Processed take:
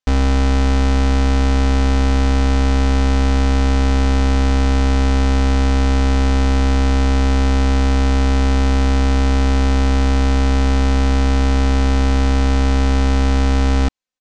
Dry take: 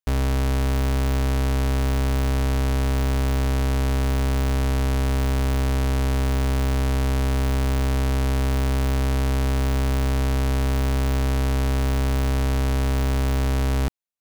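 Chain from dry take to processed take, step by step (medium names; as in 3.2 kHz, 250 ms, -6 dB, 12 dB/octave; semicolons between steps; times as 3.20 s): low-pass 7.1 kHz 24 dB/octave; comb 3.9 ms, depth 58%; trim +6 dB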